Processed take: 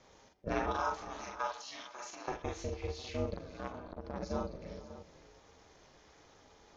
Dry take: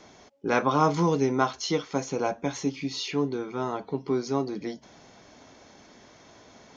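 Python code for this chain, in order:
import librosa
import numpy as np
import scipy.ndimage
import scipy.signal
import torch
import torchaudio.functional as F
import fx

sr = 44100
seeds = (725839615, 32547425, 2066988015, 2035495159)

y = fx.highpass(x, sr, hz=740.0, slope=24, at=(0.72, 2.28))
y = fx.room_shoebox(y, sr, seeds[0], volume_m3=150.0, walls='mixed', distance_m=0.38)
y = fx.level_steps(y, sr, step_db=14)
y = fx.echo_multitap(y, sr, ms=(41, 49, 450, 542, 597), db=(-3.5, -7.5, -18.0, -16.0, -14.0))
y = y * np.sin(2.0 * np.pi * 190.0 * np.arange(len(y)) / sr)
y = fx.transformer_sat(y, sr, knee_hz=830.0, at=(3.36, 4.23))
y = F.gain(torch.from_numpy(y), -4.5).numpy()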